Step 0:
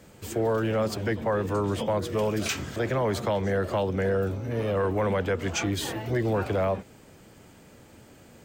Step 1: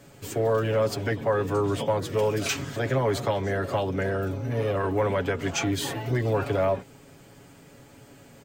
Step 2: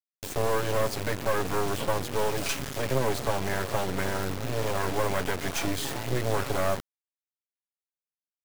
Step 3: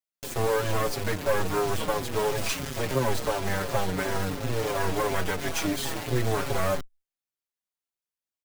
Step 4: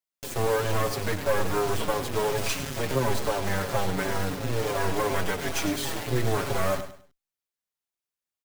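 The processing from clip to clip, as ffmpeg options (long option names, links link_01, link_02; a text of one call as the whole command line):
ffmpeg -i in.wav -af "aecho=1:1:7.2:0.6" out.wav
ffmpeg -i in.wav -af "acrusher=bits=3:dc=4:mix=0:aa=0.000001,volume=1.5dB" out.wav
ffmpeg -i in.wav -filter_complex "[0:a]asplit=2[link_01][link_02];[link_02]adelay=5.6,afreqshift=-2.9[link_03];[link_01][link_03]amix=inputs=2:normalize=1,volume=4dB" out.wav
ffmpeg -i in.wav -af "aecho=1:1:102|204|306:0.282|0.0789|0.0221" out.wav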